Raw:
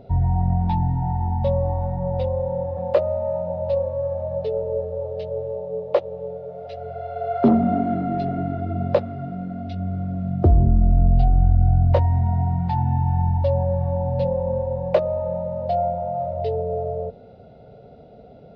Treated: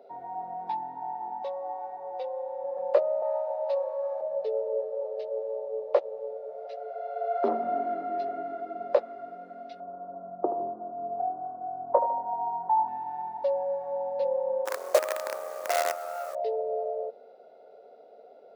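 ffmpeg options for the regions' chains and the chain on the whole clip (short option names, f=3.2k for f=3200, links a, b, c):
-filter_complex "[0:a]asettb=1/sr,asplit=3[a][b][c];[a]atrim=end=1.424[d];[b]atrim=start=1.42:end=2.64,asetpts=PTS-STARTPTS,afade=t=in:d=0.004:c=qsin,afade=t=out:st=1.216:d=0.004:c=qsin,lowshelf=f=440:g=-6.5,aecho=1:1:2.6:0.55,atrim=end_sample=53802[e];[c]atrim=start=2.636[f];[d][e]acrossfade=d=0.004:c1=hsin:c2=qsin[g];[g][f]acrossfade=d=0.004:c1=qsin:c2=hsin,asettb=1/sr,asplit=3[h][i][j];[h]atrim=end=3.224[k];[i]atrim=start=3.22:end=4.21,asetpts=PTS-STARTPTS,afade=t=in:d=0.004:c=qsin,afade=t=out:st=0.986:d=0.004:c=qsin,highpass=f=670:w=0.5412,highpass=f=670:w=1.3066,acontrast=28[l];[j]atrim=start=4.206[m];[k][l]acrossfade=d=0.004:c1=hsin:c2=qsin[n];[n][m]acrossfade=d=0.004:c1=qsin:c2=hsin,asettb=1/sr,asplit=3[o][p][q];[o]atrim=end=9.804[r];[p]atrim=start=9.8:end=12.88,asetpts=PTS-STARTPTS,afade=t=in:d=0.004:c=qsin,afade=t=out:st=3.076:d=0.004:c=qsin,lowpass=f=1.2k:w=0.5412,lowpass=f=1.2k:w=1.3066,equalizer=f=950:w=2.4:g=8.5,aecho=1:1:76|152|228|304|380:0.282|0.124|0.0546|0.024|0.0106,atrim=end_sample=135828[s];[q]atrim=start=12.876[t];[r][s]acrossfade=d=0.004:c1=hsin:c2=qsin[u];[u][t]acrossfade=d=0.004:c1=qsin:c2=hsin,asettb=1/sr,asplit=3[v][w][x];[v]atrim=end=14.654[y];[w]atrim=start=14.65:end=16.35,asetpts=PTS-STARTPTS,afade=t=in:d=0.004:c=qsin,afade=t=out:st=1.696:d=0.004:c=qsin,highshelf=f=3.3k:g=-7,acrusher=bits=4:dc=4:mix=0:aa=0.000001,highpass=210[z];[x]atrim=start=16.346[aa];[y][z]acrossfade=d=0.004:c1=hsin:c2=qsin[ab];[ab][aa]acrossfade=d=0.004:c1=qsin:c2=hsin,highpass=f=400:w=0.5412,highpass=f=400:w=1.3066,equalizer=f=3.1k:t=o:w=0.92:g=-7,volume=-3.5dB"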